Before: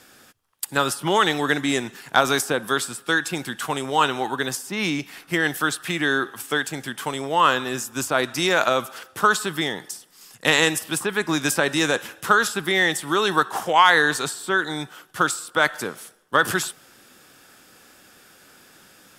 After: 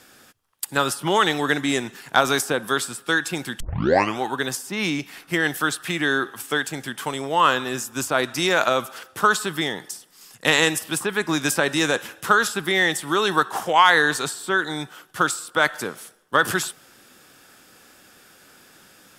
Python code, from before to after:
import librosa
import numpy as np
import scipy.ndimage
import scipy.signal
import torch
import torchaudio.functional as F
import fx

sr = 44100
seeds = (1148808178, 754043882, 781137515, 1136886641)

y = fx.edit(x, sr, fx.tape_start(start_s=3.6, length_s=0.6), tone=tone)